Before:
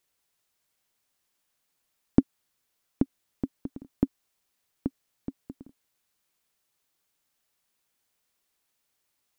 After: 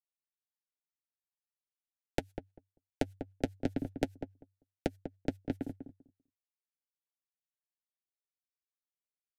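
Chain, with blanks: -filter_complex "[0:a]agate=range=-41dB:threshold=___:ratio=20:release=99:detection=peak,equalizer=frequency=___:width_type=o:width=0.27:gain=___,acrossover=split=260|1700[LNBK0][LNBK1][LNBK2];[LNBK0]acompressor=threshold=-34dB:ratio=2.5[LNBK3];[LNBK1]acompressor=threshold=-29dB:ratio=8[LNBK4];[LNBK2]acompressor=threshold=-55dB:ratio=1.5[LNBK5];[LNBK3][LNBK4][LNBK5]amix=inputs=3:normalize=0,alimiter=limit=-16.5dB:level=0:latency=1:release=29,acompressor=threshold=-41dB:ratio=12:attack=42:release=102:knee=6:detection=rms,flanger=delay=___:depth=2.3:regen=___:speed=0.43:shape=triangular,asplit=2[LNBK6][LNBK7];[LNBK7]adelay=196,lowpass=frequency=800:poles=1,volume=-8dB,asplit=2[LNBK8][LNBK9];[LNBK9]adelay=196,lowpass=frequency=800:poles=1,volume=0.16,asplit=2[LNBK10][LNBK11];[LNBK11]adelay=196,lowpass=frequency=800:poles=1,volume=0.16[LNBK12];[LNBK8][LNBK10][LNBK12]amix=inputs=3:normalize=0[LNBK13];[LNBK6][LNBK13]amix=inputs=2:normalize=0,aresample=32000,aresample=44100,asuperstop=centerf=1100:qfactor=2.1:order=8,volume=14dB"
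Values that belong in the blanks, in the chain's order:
-56dB, 96, 10.5, 5.4, -39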